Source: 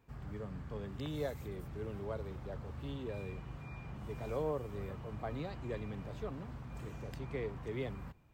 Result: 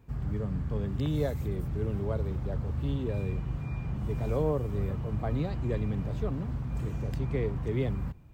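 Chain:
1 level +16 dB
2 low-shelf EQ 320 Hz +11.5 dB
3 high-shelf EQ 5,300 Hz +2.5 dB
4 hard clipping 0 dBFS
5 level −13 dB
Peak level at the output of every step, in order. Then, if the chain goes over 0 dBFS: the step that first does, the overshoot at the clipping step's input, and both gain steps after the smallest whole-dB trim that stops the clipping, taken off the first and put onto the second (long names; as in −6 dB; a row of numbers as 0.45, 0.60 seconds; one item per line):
−9.5, −3.0, −3.0, −3.0, −16.0 dBFS
no step passes full scale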